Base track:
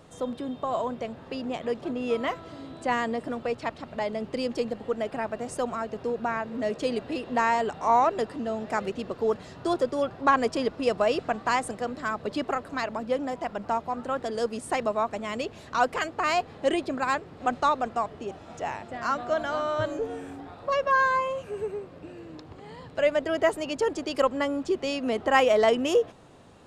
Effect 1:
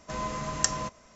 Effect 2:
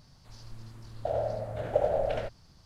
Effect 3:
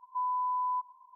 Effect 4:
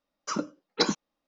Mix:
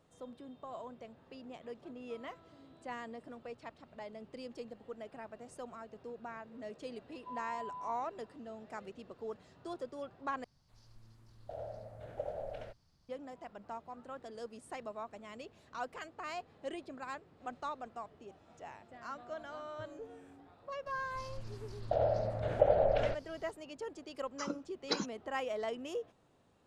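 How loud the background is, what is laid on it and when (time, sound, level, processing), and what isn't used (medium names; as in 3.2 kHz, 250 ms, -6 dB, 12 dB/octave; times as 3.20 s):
base track -17 dB
7.11 s: add 3 -14 dB
10.44 s: replace with 2 -14 dB
20.86 s: add 2 -0.5 dB + spectral gate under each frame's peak -50 dB strong
24.11 s: add 4 -10 dB
not used: 1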